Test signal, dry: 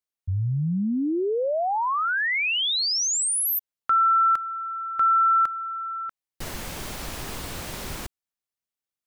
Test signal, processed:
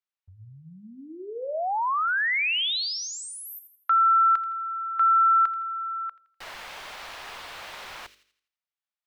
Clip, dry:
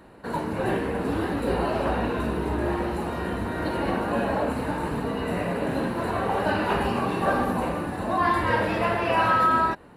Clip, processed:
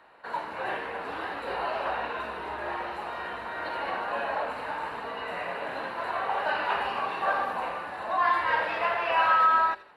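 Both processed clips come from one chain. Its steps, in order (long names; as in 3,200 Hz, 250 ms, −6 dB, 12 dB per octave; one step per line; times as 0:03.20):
three-way crossover with the lows and the highs turned down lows −22 dB, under 590 Hz, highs −16 dB, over 4,400 Hz
hum removal 49.16 Hz, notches 12
on a send: delay with a high-pass on its return 83 ms, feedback 40%, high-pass 2,600 Hz, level −10.5 dB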